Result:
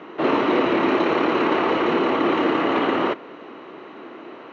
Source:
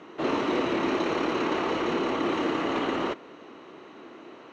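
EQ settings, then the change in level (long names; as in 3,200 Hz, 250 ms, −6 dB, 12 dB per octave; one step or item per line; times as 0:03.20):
high-pass filter 74 Hz
low-pass filter 3,100 Hz 12 dB per octave
low-shelf EQ 140 Hz −7 dB
+8.0 dB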